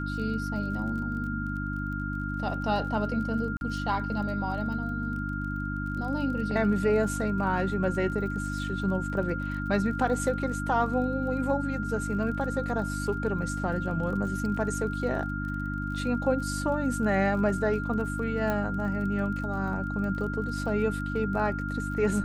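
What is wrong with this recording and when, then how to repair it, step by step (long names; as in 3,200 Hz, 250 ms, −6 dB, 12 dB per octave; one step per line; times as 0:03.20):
surface crackle 28 per second −38 dBFS
mains hum 50 Hz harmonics 6 −33 dBFS
whistle 1,400 Hz −35 dBFS
0:03.57–0:03.61: drop-out 41 ms
0:18.50: click −16 dBFS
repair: click removal
notch filter 1,400 Hz, Q 30
hum removal 50 Hz, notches 6
repair the gap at 0:03.57, 41 ms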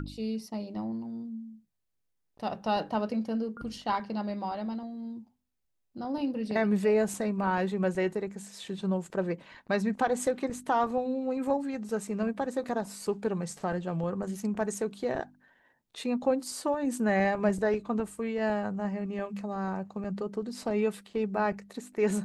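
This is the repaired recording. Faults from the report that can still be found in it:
none of them is left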